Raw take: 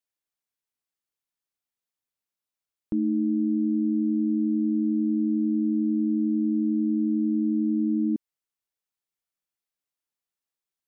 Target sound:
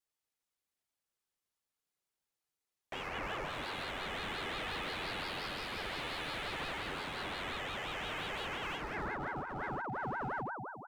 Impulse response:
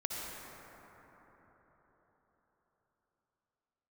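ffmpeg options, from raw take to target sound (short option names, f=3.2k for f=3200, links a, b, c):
-filter_complex "[0:a]bandreject=f=390:w=12,flanger=delay=16.5:depth=2:speed=0.24,asplit=2[a][b];[1:a]atrim=start_sample=2205,asetrate=24255,aresample=44100[c];[b][c]afir=irnorm=-1:irlink=0,volume=-5.5dB[d];[a][d]amix=inputs=2:normalize=0,aeval=exprs='0.0188*(abs(mod(val(0)/0.0188+3,4)-2)-1)':c=same,equalizer=f=140:t=o:w=2:g=4.5,aecho=1:1:2.4:0.68,aeval=exprs='val(0)*sin(2*PI*850*n/s+850*0.5/5.7*sin(2*PI*5.7*n/s))':c=same"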